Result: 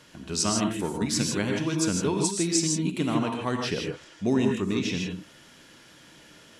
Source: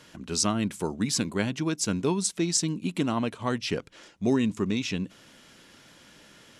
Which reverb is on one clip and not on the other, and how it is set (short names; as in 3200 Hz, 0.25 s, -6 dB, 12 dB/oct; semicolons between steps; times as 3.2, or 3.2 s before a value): non-linear reverb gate 0.18 s rising, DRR 1.5 dB; gain -1 dB